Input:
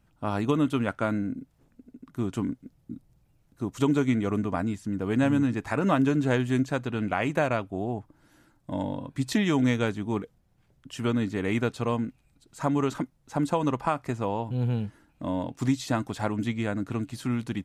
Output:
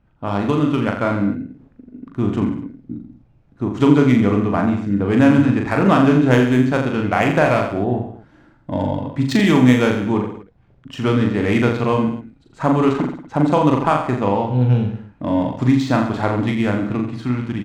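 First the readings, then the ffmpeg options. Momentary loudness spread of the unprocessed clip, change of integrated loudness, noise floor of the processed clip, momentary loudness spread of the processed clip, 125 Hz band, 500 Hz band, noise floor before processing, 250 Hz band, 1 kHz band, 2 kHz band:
12 LU, +10.5 dB, −54 dBFS, 12 LU, +10.5 dB, +10.5 dB, −66 dBFS, +10.5 dB, +10.5 dB, +10.0 dB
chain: -filter_complex "[0:a]adynamicsmooth=sensitivity=5:basefreq=2700,asplit=2[link_01][link_02];[link_02]aecho=0:1:40|84|132.4|185.6|244.2:0.631|0.398|0.251|0.158|0.1[link_03];[link_01][link_03]amix=inputs=2:normalize=0,dynaudnorm=framelen=320:gausssize=7:maxgain=3.5dB,volume=5dB"

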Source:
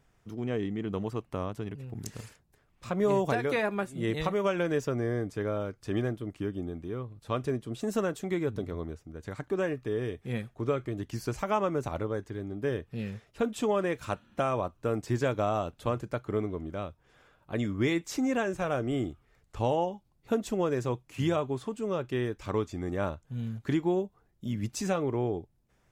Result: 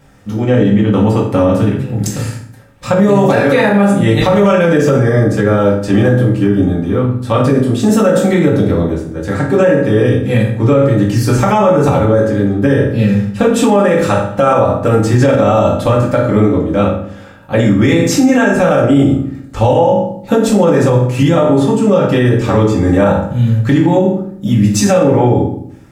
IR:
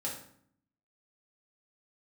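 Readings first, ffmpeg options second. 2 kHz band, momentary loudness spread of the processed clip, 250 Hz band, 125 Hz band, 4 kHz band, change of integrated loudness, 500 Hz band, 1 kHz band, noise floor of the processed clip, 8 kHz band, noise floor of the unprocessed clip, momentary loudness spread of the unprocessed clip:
+18.5 dB, 6 LU, +21.5 dB, +22.5 dB, +18.0 dB, +20.0 dB, +19.5 dB, +18.5 dB, −32 dBFS, +20.5 dB, −69 dBFS, 10 LU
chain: -filter_complex "[1:a]atrim=start_sample=2205[link_01];[0:a][link_01]afir=irnorm=-1:irlink=0,alimiter=level_in=21dB:limit=-1dB:release=50:level=0:latency=1,volume=-1dB"

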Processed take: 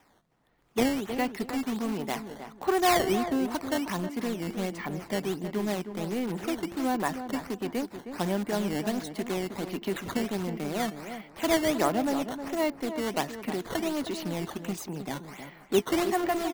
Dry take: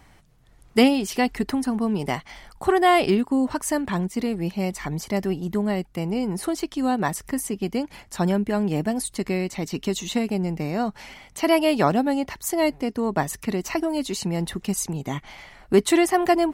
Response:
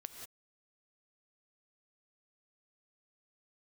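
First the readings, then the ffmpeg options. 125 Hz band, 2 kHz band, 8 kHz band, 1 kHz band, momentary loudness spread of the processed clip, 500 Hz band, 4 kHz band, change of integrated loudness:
−8.5 dB, −5.0 dB, −7.5 dB, −5.5 dB, 9 LU, −6.0 dB, −4.5 dB, −6.0 dB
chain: -filter_complex "[0:a]acrossover=split=180 4300:gain=0.141 1 0.224[link_01][link_02][link_03];[link_01][link_02][link_03]amix=inputs=3:normalize=0,bandreject=frequency=342.9:width_type=h:width=4,bandreject=frequency=685.8:width_type=h:width=4,bandreject=frequency=1028.7:width_type=h:width=4,bandreject=frequency=1371.6:width_type=h:width=4,bandreject=frequency=1714.5:width_type=h:width=4,dynaudnorm=framelen=420:gausssize=5:maxgain=4dB,asplit=2[link_04][link_05];[link_05]aeval=exprs='(mod(9.44*val(0)+1,2)-1)/9.44':channel_layout=same,volume=-10dB[link_06];[link_04][link_06]amix=inputs=2:normalize=0,acrusher=samples=10:mix=1:aa=0.000001:lfo=1:lforange=16:lforate=1.4,asplit=2[link_07][link_08];[link_08]adelay=314,lowpass=frequency=1600:poles=1,volume=-9dB,asplit=2[link_09][link_10];[link_10]adelay=314,lowpass=frequency=1600:poles=1,volume=0.26,asplit=2[link_11][link_12];[link_12]adelay=314,lowpass=frequency=1600:poles=1,volume=0.26[link_13];[link_09][link_11][link_13]amix=inputs=3:normalize=0[link_14];[link_07][link_14]amix=inputs=2:normalize=0,volume=-8.5dB"

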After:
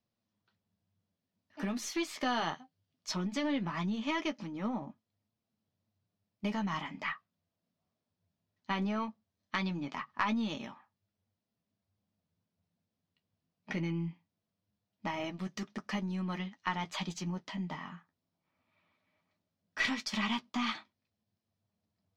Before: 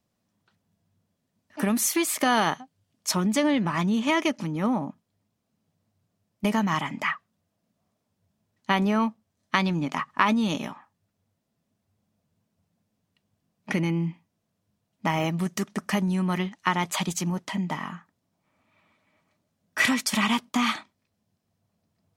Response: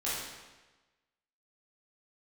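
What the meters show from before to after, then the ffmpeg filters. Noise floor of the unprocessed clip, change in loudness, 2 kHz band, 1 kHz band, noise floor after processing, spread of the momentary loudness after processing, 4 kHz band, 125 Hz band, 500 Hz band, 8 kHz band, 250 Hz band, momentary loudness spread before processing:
−78 dBFS, −10.0 dB, −9.5 dB, −10.5 dB, below −85 dBFS, 10 LU, −8.5 dB, −10.0 dB, −11.0 dB, −16.0 dB, −10.0 dB, 10 LU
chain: -af "aeval=exprs='0.631*(cos(1*acos(clip(val(0)/0.631,-1,1)))-cos(1*PI/2))+0.0447*(cos(4*acos(clip(val(0)/0.631,-1,1)))-cos(4*PI/2))':channel_layout=same,flanger=delay=8.5:depth=3.9:regen=-38:speed=0.19:shape=triangular,highshelf=frequency=7000:width_type=q:width=1.5:gain=-13.5,volume=-6.5dB"

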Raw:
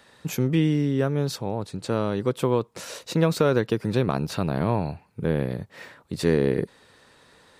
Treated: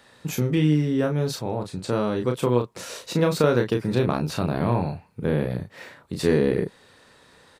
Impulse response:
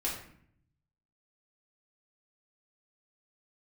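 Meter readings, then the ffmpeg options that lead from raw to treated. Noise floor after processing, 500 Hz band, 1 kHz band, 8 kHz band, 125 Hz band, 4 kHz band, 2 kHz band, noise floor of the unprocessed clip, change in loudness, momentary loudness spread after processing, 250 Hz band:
−55 dBFS, +1.0 dB, +1.0 dB, +1.5 dB, +1.0 dB, +1.0 dB, +1.0 dB, −57 dBFS, +1.0 dB, 12 LU, +1.0 dB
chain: -filter_complex "[0:a]asplit=2[link_01][link_02];[link_02]adelay=33,volume=-5dB[link_03];[link_01][link_03]amix=inputs=2:normalize=0"

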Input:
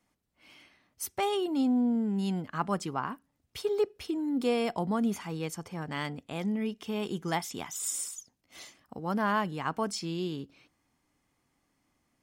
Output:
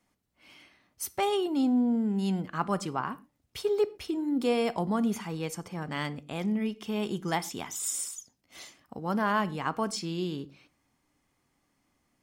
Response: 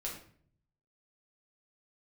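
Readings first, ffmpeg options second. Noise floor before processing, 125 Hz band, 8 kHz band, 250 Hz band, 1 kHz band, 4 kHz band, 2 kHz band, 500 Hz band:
−77 dBFS, +1.5 dB, +1.0 dB, +1.5 dB, +1.0 dB, +1.0 dB, +1.5 dB, +1.5 dB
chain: -filter_complex "[0:a]asplit=2[link_01][link_02];[1:a]atrim=start_sample=2205,atrim=end_sample=6174[link_03];[link_02][link_03]afir=irnorm=-1:irlink=0,volume=-12.5dB[link_04];[link_01][link_04]amix=inputs=2:normalize=0"

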